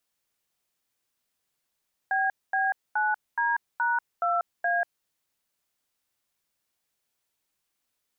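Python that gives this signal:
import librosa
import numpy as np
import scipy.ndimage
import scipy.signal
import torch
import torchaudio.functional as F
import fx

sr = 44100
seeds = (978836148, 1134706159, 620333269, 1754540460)

y = fx.dtmf(sr, digits='BB9D#2A', tone_ms=190, gap_ms=232, level_db=-25.0)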